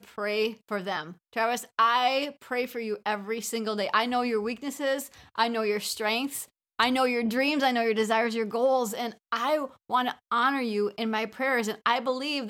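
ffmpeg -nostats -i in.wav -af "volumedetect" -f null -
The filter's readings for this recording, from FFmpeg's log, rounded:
mean_volume: -27.9 dB
max_volume: -9.0 dB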